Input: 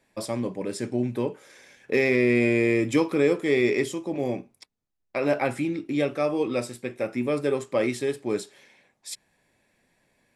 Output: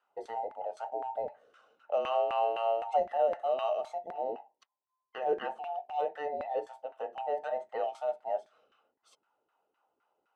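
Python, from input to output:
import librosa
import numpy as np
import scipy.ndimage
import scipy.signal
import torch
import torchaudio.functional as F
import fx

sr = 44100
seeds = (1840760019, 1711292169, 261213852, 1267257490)

y = fx.band_invert(x, sr, width_hz=1000)
y = fx.filter_lfo_bandpass(y, sr, shape='saw_down', hz=3.9, low_hz=310.0, high_hz=1600.0, q=1.7)
y = y * librosa.db_to_amplitude(-4.5)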